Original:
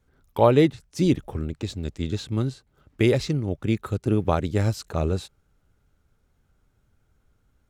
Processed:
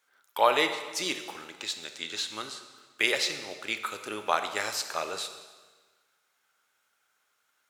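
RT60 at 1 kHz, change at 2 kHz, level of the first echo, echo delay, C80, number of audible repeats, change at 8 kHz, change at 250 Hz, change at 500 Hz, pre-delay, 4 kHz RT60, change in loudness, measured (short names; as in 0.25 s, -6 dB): 1.4 s, +6.0 dB, none, none, 10.5 dB, none, +6.5 dB, -17.5 dB, -8.5 dB, 13 ms, 1.3 s, -5.5 dB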